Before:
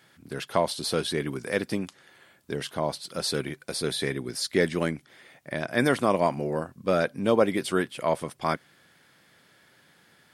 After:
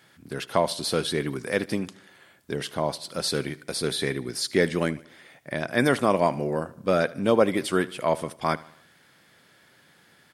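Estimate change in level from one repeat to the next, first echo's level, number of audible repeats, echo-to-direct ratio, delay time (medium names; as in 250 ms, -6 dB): -6.5 dB, -20.0 dB, 3, -19.0 dB, 76 ms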